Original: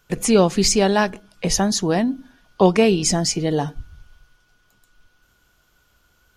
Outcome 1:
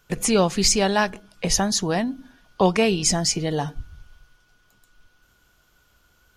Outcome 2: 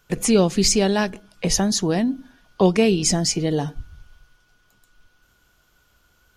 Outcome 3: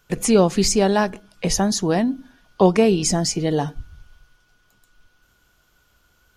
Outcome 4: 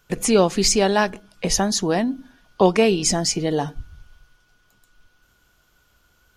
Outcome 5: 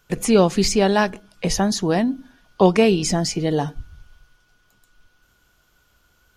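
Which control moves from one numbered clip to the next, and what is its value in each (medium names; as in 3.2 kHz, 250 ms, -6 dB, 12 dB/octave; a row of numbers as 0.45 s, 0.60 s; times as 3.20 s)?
dynamic bell, frequency: 310 Hz, 1 kHz, 2.9 kHz, 110 Hz, 7.5 kHz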